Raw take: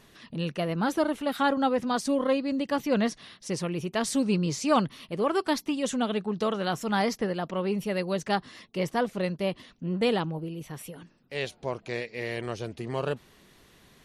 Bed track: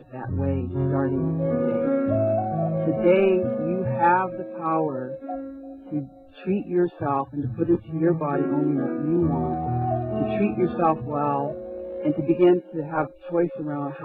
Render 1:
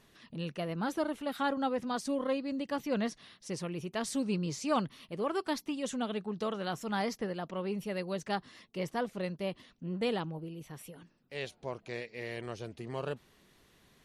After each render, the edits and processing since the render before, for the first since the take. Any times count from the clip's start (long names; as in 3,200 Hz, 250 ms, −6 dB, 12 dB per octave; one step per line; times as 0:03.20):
level −7 dB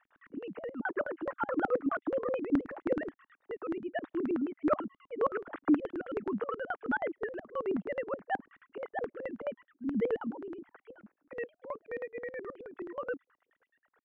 three sine waves on the formant tracks
auto-filter low-pass square 9.4 Hz 280–1,500 Hz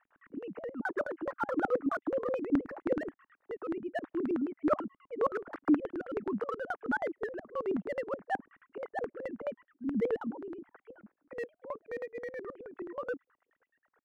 adaptive Wiener filter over 9 samples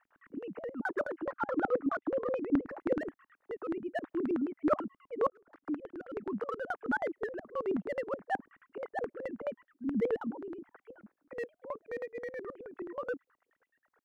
0:01.24–0:02.70: high-frequency loss of the air 99 metres
0:05.30–0:06.64: fade in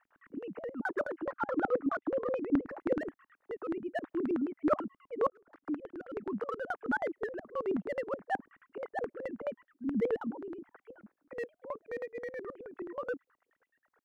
no processing that can be heard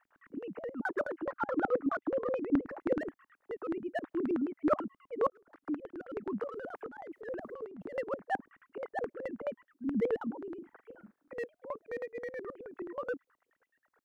0:06.44–0:07.97: compressor whose output falls as the input rises −43 dBFS
0:10.58–0:11.34: double-tracking delay 43 ms −10 dB